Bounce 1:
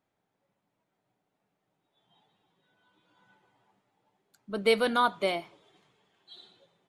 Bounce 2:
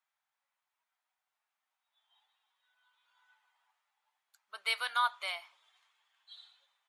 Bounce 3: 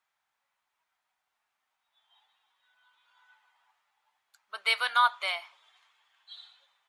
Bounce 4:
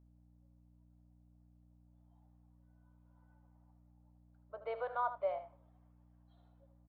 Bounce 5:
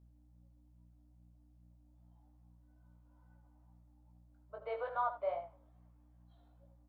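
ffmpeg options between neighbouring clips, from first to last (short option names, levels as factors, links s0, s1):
-af "highpass=f=980:w=0.5412,highpass=f=980:w=1.3066,volume=0.75"
-af "highshelf=f=7200:g=-7.5,volume=2.24"
-af "lowpass=f=560:t=q:w=4.9,aeval=exprs='val(0)+0.00112*(sin(2*PI*60*n/s)+sin(2*PI*2*60*n/s)/2+sin(2*PI*3*60*n/s)/3+sin(2*PI*4*60*n/s)/4+sin(2*PI*5*60*n/s)/5)':c=same,aecho=1:1:77:0.266,volume=0.631"
-af "flanger=delay=17.5:depth=2.5:speed=2.4,volume=1.5"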